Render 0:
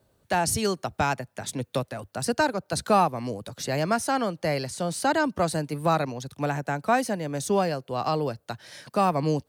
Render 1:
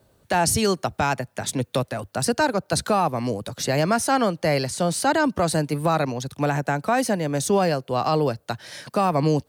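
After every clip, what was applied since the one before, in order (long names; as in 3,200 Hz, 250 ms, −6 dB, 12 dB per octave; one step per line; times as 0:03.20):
brickwall limiter −17.5 dBFS, peak gain reduction 7.5 dB
level +6 dB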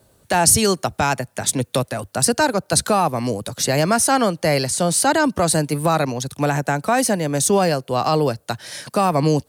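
parametric band 9,900 Hz +7.5 dB 1.4 octaves
level +3 dB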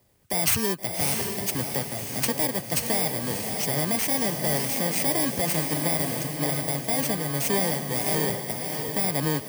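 samples in bit-reversed order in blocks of 32 samples
feedback delay with all-pass diffusion 638 ms, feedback 42%, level −4.5 dB
level −8.5 dB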